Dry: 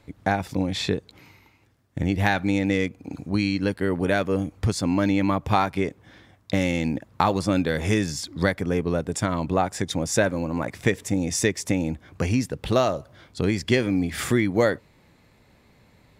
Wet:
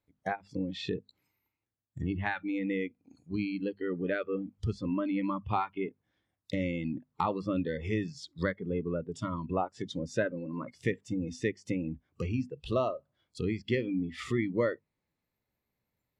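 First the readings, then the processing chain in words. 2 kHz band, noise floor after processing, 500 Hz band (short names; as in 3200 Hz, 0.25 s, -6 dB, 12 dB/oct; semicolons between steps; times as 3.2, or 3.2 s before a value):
-10.5 dB, under -85 dBFS, -8.5 dB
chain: notches 50/100/150/200/250 Hz; treble ducked by the level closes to 2400 Hz, closed at -21.5 dBFS; spectral noise reduction 20 dB; gain -8 dB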